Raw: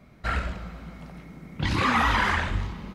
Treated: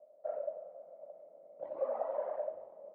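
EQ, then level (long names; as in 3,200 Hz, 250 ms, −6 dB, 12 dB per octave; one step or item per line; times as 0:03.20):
flat-topped band-pass 590 Hz, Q 5.5
+7.5 dB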